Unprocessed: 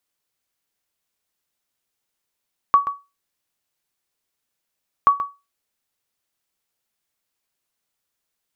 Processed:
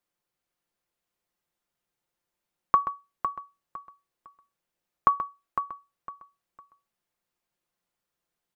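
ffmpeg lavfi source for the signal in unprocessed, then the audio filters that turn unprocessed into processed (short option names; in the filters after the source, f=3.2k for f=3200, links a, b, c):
-f lavfi -i "aevalsrc='0.531*(sin(2*PI*1130*mod(t,2.33))*exp(-6.91*mod(t,2.33)/0.25)+0.251*sin(2*PI*1130*max(mod(t,2.33)-0.13,0))*exp(-6.91*max(mod(t,2.33)-0.13,0)/0.25))':d=4.66:s=44100"
-filter_complex "[0:a]highshelf=f=2.1k:g=-10,aecho=1:1:5.7:0.39,asplit=2[a][b];[b]aecho=0:1:506|1012|1518:0.376|0.0977|0.0254[c];[a][c]amix=inputs=2:normalize=0"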